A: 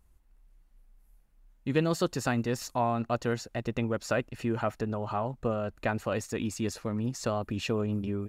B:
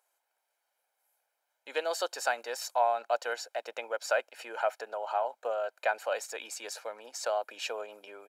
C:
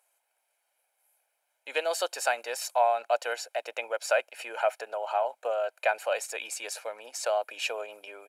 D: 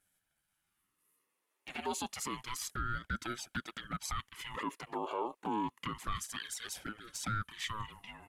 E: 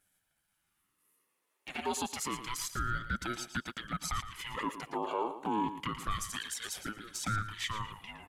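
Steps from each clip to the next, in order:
steep high-pass 440 Hz 36 dB/oct; comb 1.3 ms, depth 57%
fifteen-band EQ 160 Hz -10 dB, 630 Hz +4 dB, 2500 Hz +7 dB, 10000 Hz +9 dB
limiter -23.5 dBFS, peak gain reduction 11 dB; envelope flanger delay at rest 11.3 ms, full sweep at -30.5 dBFS; ring modulator with a swept carrier 540 Hz, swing 55%, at 0.29 Hz; gain +1 dB
feedback echo 0.114 s, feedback 19%, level -11 dB; gain +2.5 dB

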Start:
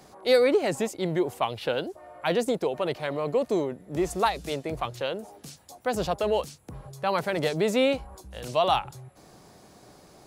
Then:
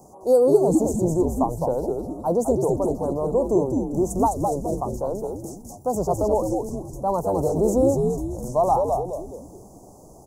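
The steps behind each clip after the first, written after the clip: elliptic band-stop 930–6400 Hz, stop band 50 dB; frequency-shifting echo 0.208 s, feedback 43%, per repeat -100 Hz, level -3.5 dB; gain +4.5 dB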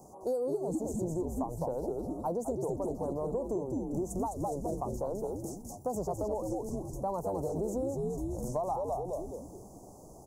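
compressor 6:1, threshold -26 dBFS, peak gain reduction 14.5 dB; gain -4.5 dB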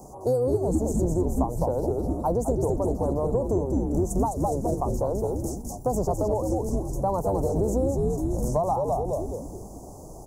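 octaver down 2 oct, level 0 dB; gain +8 dB

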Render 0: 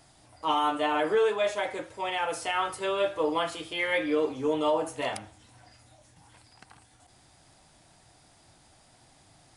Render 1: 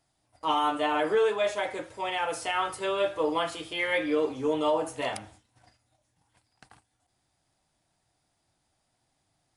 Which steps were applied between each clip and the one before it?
gate -53 dBFS, range -16 dB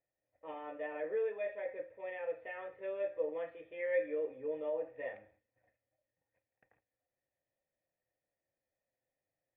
vocal tract filter e; gain -1.5 dB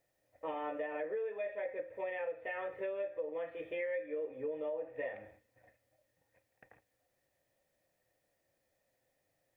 compressor 8:1, threshold -47 dBFS, peak gain reduction 19 dB; gain +11 dB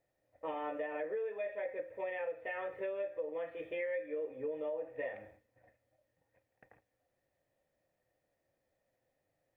mismatched tape noise reduction decoder only

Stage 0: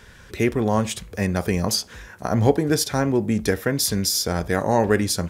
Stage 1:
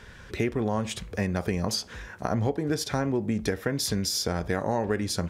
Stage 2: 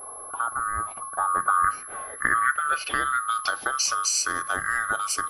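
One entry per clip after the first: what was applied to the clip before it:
high shelf 8300 Hz -11.5 dB; compressor 4:1, threshold -24 dBFS, peak gain reduction 11.5 dB
band-swap scrambler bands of 1000 Hz; low-pass sweep 910 Hz -> 9800 Hz, 1.16–4.49; whine 11000 Hz -38 dBFS

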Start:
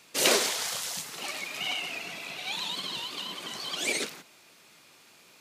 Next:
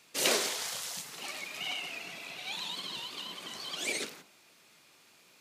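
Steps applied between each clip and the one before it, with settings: de-hum 49.76 Hz, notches 32; gain -4.5 dB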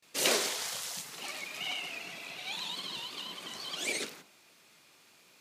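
gate with hold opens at -52 dBFS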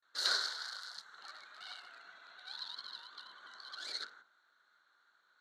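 Wiener smoothing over 9 samples; double band-pass 2500 Hz, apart 1.5 oct; gain +5.5 dB

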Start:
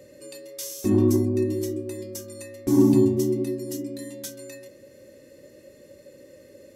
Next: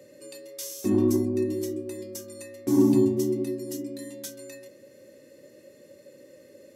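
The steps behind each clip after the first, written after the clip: HPF 130 Hz 12 dB/oct; gain -2 dB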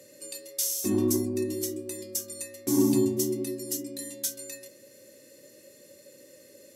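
bell 11000 Hz +13.5 dB 2.7 oct; gain -3.5 dB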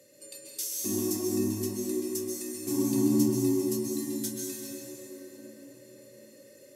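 reverb RT60 5.2 s, pre-delay 0.118 s, DRR -3.5 dB; gain -6 dB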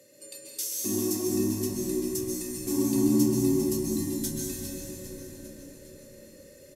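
frequency-shifting echo 0.403 s, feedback 56%, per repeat -61 Hz, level -12 dB; gain +1.5 dB

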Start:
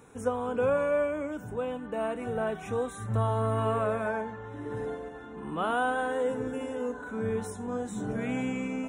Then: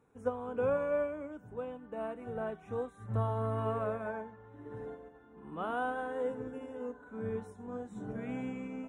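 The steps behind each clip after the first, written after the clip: high shelf 2900 Hz -11 dB; upward expander 1.5:1, over -45 dBFS; gain -3.5 dB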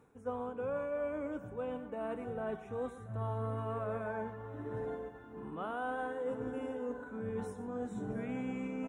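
reverse; compressor 6:1, threshold -42 dBFS, peak gain reduction 14.5 dB; reverse; tapped delay 0.118/0.684 s -15/-17.5 dB; gain +6.5 dB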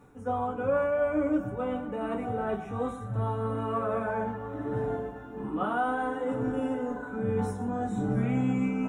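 reverb RT60 0.25 s, pre-delay 3 ms, DRR -1 dB; gain +5 dB

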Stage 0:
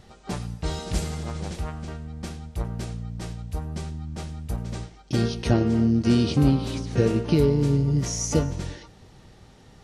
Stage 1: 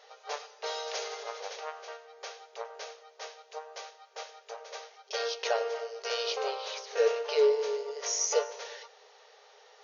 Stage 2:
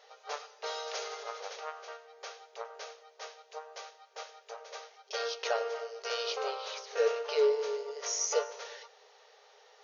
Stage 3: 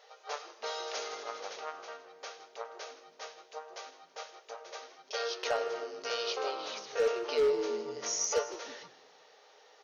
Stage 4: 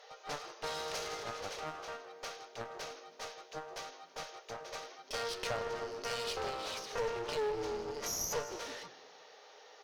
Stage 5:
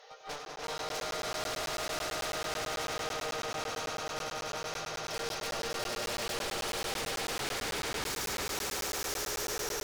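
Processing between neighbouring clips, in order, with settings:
FFT band-pass 400–6800 Hz
dynamic EQ 1300 Hz, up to +6 dB, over -57 dBFS, Q 5.5; gain -2.5 dB
hard clip -22.5 dBFS, distortion -19 dB; frequency-shifting echo 0.161 s, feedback 32%, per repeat -99 Hz, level -16 dB
compressor 2:1, threshold -36 dBFS, peak gain reduction 6.5 dB; one-sided clip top -48 dBFS; gain +3 dB
swelling echo 98 ms, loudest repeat 8, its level -3 dB; wavefolder -31.5 dBFS; crackling interface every 0.11 s, samples 512, zero, from 0.45; gain +1 dB

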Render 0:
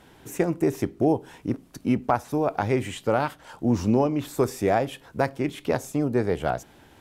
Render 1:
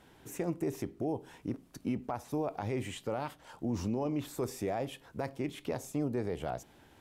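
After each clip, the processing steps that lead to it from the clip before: dynamic EQ 1500 Hz, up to -5 dB, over -46 dBFS, Q 3.1; limiter -17 dBFS, peak gain reduction 8 dB; gain -7 dB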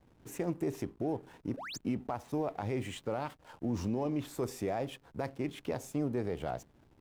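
painted sound rise, 1.57–1.78, 450–7900 Hz -42 dBFS; backlash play -50.5 dBFS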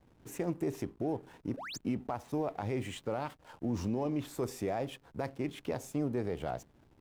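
nothing audible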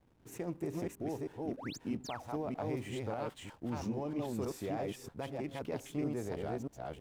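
reverse delay 0.318 s, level -1 dB; gain -5 dB

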